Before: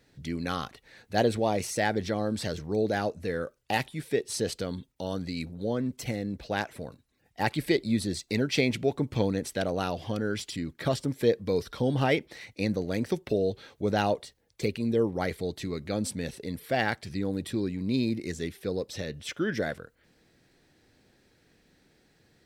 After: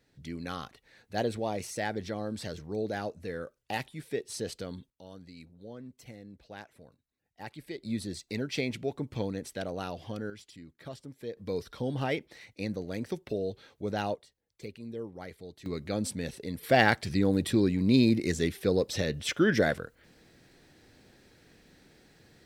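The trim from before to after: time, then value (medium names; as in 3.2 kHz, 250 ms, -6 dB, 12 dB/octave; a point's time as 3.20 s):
-6 dB
from 4.90 s -15.5 dB
from 7.83 s -6.5 dB
from 10.30 s -15.5 dB
from 11.37 s -6 dB
from 14.15 s -13.5 dB
from 15.66 s -1.5 dB
from 16.63 s +5 dB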